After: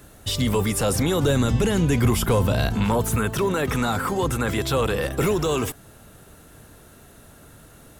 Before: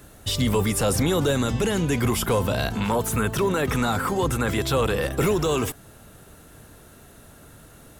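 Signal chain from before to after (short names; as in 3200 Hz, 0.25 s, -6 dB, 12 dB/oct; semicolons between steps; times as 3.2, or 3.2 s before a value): 1.23–3.16 low shelf 190 Hz +7 dB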